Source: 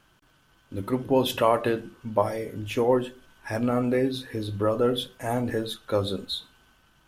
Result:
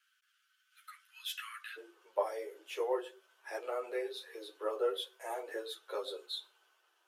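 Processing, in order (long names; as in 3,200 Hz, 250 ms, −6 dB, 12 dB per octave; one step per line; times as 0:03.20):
Butterworth high-pass 1,300 Hz 72 dB per octave, from 0:01.76 360 Hz
string-ensemble chorus
level −6.5 dB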